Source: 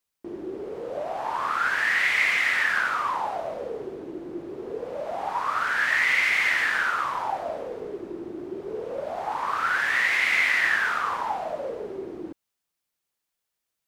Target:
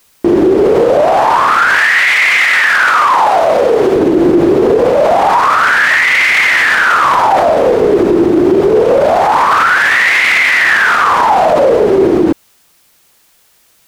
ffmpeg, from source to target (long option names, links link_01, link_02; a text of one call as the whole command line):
ffmpeg -i in.wav -filter_complex "[0:a]asettb=1/sr,asplit=3[link_01][link_02][link_03];[link_01]atrim=end=1.774[link_04];[link_02]atrim=start=1.77:end=3.96,asetpts=PTS-STARTPTS,afade=type=in:duration=0.004:curve=qsin,afade=type=out:start_time=2.186:duration=0.004:curve=qsin,lowshelf=frequency=360:gain=-8.5[link_05];[link_03]atrim=start=3.956[link_06];[link_04][link_05]acrossfade=duration=0.004:curve1=hsin:curve2=qsin[link_07];[link_07][link_06]acrossfade=duration=0.004:curve1=qsin:curve2=hsin,alimiter=level_in=33dB:limit=-1dB:release=50:level=0:latency=1,volume=-1dB" out.wav